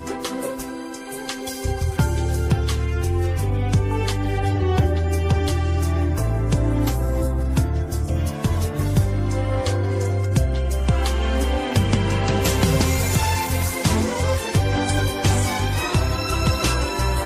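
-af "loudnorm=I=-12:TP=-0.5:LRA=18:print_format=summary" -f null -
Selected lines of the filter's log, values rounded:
Input Integrated:    -21.7 LUFS
Input True Peak:      -7.3 dBTP
Input LRA:             2.1 LU
Input Threshold:     -31.7 LUFS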